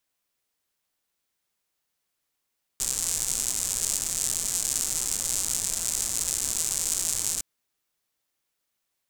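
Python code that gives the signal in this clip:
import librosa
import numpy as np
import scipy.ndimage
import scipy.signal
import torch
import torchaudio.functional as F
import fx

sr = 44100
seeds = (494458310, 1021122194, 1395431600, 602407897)

y = fx.rain(sr, seeds[0], length_s=4.61, drops_per_s=190.0, hz=7500.0, bed_db=-13.5)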